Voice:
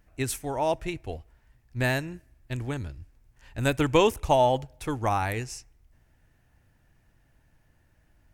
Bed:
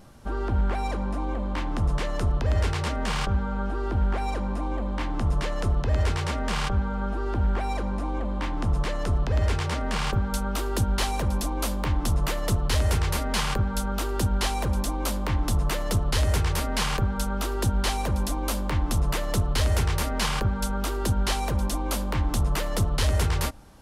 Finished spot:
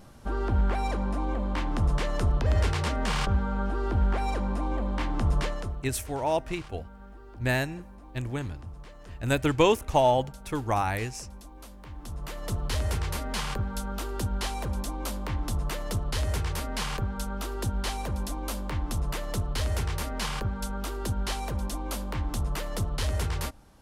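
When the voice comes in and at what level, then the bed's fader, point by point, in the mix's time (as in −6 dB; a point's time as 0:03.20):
5.65 s, −0.5 dB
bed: 0:05.44 −0.5 dB
0:05.98 −19.5 dB
0:11.80 −19.5 dB
0:12.60 −5.5 dB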